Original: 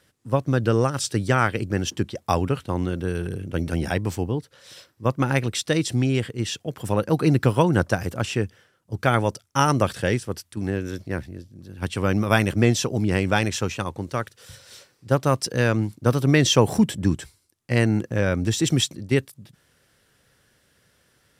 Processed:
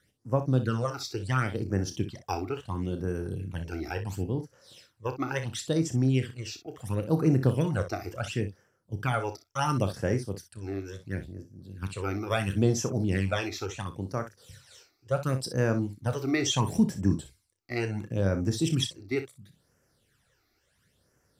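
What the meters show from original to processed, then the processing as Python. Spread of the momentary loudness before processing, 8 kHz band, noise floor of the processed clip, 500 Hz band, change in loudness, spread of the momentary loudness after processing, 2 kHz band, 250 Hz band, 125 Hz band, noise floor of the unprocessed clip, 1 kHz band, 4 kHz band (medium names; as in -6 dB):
11 LU, -8.0 dB, -72 dBFS, -7.5 dB, -6.5 dB, 12 LU, -9.5 dB, -6.0 dB, -5.5 dB, -65 dBFS, -8.5 dB, -8.0 dB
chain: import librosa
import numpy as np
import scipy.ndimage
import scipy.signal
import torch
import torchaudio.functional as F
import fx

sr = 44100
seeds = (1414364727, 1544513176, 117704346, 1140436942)

y = fx.phaser_stages(x, sr, stages=12, low_hz=160.0, high_hz=3700.0, hz=0.72, feedback_pct=30)
y = fx.room_early_taps(y, sr, ms=(31, 61), db=(-10.5, -11.5))
y = F.gain(torch.from_numpy(y), -6.0).numpy()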